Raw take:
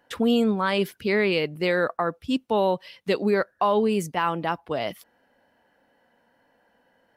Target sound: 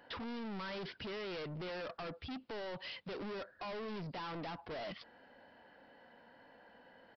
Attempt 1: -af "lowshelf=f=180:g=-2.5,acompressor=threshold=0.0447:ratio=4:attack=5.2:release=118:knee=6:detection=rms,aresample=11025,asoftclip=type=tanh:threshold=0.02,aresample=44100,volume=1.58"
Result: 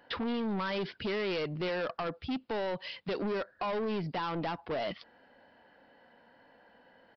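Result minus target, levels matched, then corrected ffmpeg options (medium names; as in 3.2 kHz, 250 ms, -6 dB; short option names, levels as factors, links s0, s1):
saturation: distortion -5 dB
-af "lowshelf=f=180:g=-2.5,acompressor=threshold=0.0447:ratio=4:attack=5.2:release=118:knee=6:detection=rms,aresample=11025,asoftclip=type=tanh:threshold=0.00531,aresample=44100,volume=1.58"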